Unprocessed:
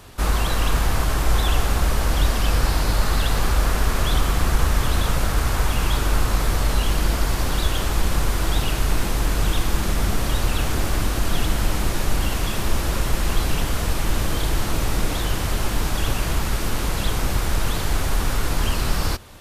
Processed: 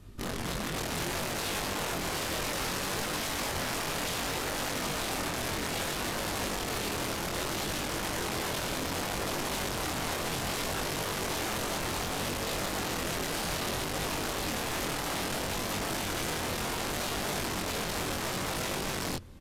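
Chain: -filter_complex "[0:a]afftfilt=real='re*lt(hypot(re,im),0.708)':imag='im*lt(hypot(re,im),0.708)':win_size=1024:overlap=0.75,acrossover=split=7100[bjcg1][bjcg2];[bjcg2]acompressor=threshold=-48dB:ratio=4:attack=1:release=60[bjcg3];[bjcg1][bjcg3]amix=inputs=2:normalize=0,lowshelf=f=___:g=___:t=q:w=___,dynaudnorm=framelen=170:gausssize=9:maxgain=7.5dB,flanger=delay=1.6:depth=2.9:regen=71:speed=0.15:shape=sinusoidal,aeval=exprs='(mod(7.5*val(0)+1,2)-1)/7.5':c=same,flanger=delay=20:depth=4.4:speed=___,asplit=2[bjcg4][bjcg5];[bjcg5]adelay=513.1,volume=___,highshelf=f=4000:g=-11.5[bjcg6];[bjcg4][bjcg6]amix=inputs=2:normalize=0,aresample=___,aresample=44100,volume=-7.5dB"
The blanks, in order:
440, 10.5, 1.5, 0.64, -30dB, 32000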